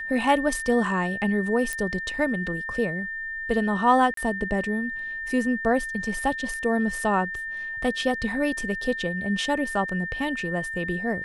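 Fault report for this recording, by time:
whine 1.8 kHz -30 dBFS
1.73 s: pop -15 dBFS
4.14–4.17 s: dropout 33 ms

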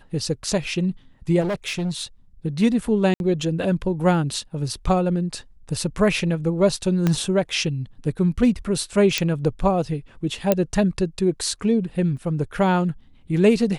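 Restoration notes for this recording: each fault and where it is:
1.40–2.04 s: clipped -21 dBFS
3.14–3.20 s: dropout 61 ms
7.07 s: pop -8 dBFS
9.18 s: pop -5 dBFS
10.52 s: pop -4 dBFS
12.17 s: dropout 2.8 ms

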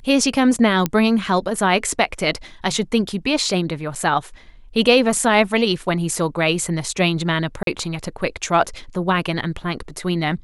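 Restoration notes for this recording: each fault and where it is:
0.86 s: pop -5 dBFS
3.95–3.96 s: dropout 6.6 ms
7.63–7.67 s: dropout 42 ms

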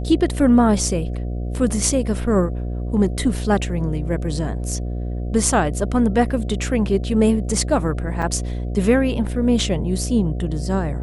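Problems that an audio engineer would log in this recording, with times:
buzz 60 Hz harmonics 12 -25 dBFS
8.22 s: dropout 4.2 ms

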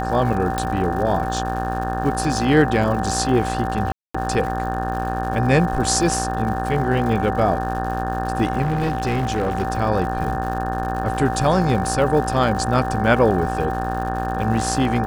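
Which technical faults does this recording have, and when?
buzz 60 Hz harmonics 30 -26 dBFS
crackle 190 per s -30 dBFS
whine 770 Hz -25 dBFS
0.58 s: pop
3.92–4.14 s: dropout 225 ms
8.62–9.67 s: clipped -16.5 dBFS

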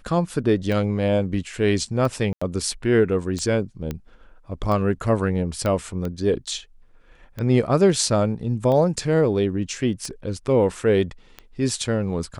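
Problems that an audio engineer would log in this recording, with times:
tick 45 rpm
2.33–2.42 s: dropout 85 ms
3.91 s: pop -15 dBFS
5.66 s: pop -13 dBFS

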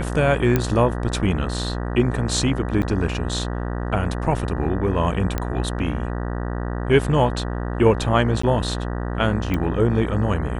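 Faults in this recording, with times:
buzz 60 Hz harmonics 32 -26 dBFS
0.56 s: pop -6 dBFS
2.82–2.83 s: dropout 7.2 ms
5.38 s: pop -10 dBFS
8.42–8.43 s: dropout 14 ms
9.54 s: pop -12 dBFS

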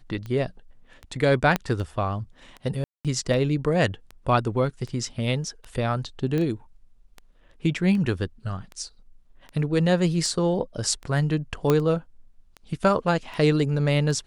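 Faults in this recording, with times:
tick 78 rpm -24 dBFS
1.56 s: pop -9 dBFS
2.84–3.05 s: dropout 207 ms
6.38 s: pop -16 dBFS
11.70 s: pop -8 dBFS

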